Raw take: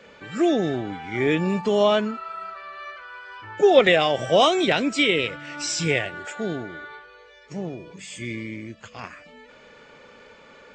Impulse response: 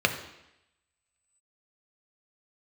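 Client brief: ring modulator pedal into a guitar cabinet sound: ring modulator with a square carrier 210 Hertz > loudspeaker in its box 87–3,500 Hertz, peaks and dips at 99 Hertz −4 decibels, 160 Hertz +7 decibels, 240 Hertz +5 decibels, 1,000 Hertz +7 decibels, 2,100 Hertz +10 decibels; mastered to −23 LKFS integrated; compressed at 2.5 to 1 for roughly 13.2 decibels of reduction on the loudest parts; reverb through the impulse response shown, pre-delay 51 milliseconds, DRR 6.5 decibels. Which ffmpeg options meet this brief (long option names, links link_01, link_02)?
-filter_complex "[0:a]acompressor=threshold=-31dB:ratio=2.5,asplit=2[link_01][link_02];[1:a]atrim=start_sample=2205,adelay=51[link_03];[link_02][link_03]afir=irnorm=-1:irlink=0,volume=-20.5dB[link_04];[link_01][link_04]amix=inputs=2:normalize=0,aeval=exprs='val(0)*sgn(sin(2*PI*210*n/s))':channel_layout=same,highpass=87,equalizer=frequency=99:width_type=q:width=4:gain=-4,equalizer=frequency=160:width_type=q:width=4:gain=7,equalizer=frequency=240:width_type=q:width=4:gain=5,equalizer=frequency=1000:width_type=q:width=4:gain=7,equalizer=frequency=2100:width_type=q:width=4:gain=10,lowpass=frequency=3500:width=0.5412,lowpass=frequency=3500:width=1.3066,volume=6dB"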